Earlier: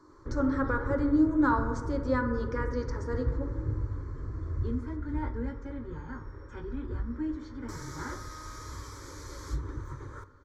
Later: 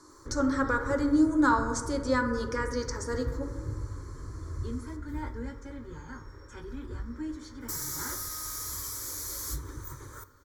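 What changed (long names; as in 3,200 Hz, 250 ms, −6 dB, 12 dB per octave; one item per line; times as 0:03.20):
background −4.0 dB
master: remove head-to-tape spacing loss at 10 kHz 26 dB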